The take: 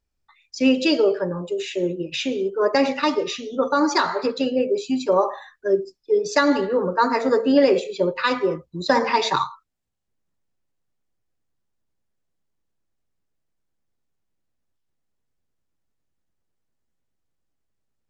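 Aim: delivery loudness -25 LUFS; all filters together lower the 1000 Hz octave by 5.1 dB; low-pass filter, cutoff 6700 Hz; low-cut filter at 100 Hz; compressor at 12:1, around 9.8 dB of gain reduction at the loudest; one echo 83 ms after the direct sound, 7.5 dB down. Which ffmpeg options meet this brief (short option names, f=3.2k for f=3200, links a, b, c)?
-af "highpass=100,lowpass=6.7k,equalizer=f=1k:t=o:g=-6,acompressor=threshold=-23dB:ratio=12,aecho=1:1:83:0.422,volume=3dB"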